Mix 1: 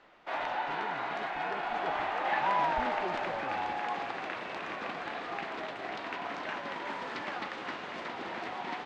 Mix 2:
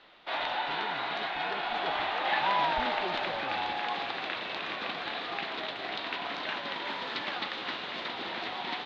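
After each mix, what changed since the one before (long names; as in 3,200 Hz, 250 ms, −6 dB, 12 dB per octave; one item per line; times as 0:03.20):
background: add high-shelf EQ 7,500 Hz +11 dB
master: add low-pass with resonance 3,800 Hz, resonance Q 3.7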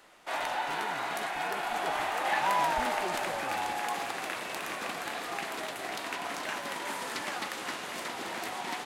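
background: remove high-frequency loss of the air 170 metres
master: remove low-pass with resonance 3,800 Hz, resonance Q 3.7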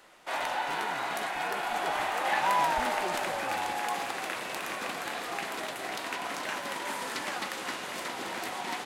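reverb: on, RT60 0.30 s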